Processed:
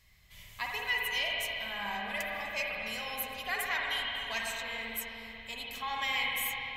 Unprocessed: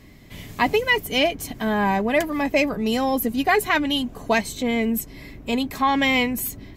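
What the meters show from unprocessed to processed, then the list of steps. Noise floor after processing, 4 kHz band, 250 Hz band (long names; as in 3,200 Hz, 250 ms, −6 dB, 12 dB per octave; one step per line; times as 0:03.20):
−53 dBFS, −7.0 dB, −28.0 dB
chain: guitar amp tone stack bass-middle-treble 10-0-10
spring reverb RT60 3.6 s, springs 49/54 ms, chirp 35 ms, DRR −3 dB
level −8.5 dB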